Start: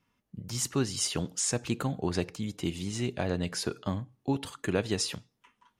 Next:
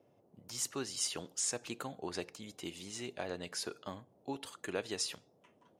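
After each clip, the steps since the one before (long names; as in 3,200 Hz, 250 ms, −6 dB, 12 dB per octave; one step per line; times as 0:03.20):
bass and treble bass −14 dB, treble +2 dB
noise in a band 96–670 Hz −62 dBFS
level −6.5 dB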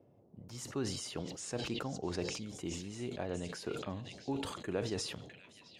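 spectral tilt −3 dB per octave
echo through a band-pass that steps 655 ms, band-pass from 3,000 Hz, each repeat 0.7 octaves, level −6 dB
level that may fall only so fast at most 49 dB per second
level −2 dB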